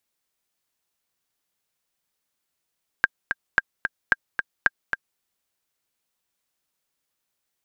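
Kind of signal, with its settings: metronome 222 bpm, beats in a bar 2, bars 4, 1.6 kHz, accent 7 dB -3.5 dBFS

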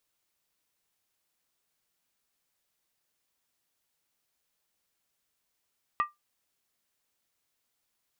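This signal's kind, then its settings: skin hit, lowest mode 1.19 kHz, decay 0.17 s, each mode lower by 9 dB, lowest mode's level -19.5 dB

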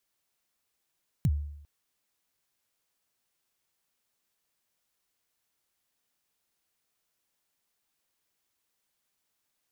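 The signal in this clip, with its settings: kick drum length 0.40 s, from 180 Hz, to 73 Hz, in 49 ms, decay 0.77 s, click on, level -19 dB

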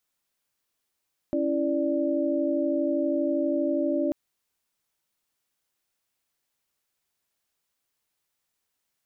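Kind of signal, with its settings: chord C#4/E4/D5 sine, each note -27 dBFS 2.79 s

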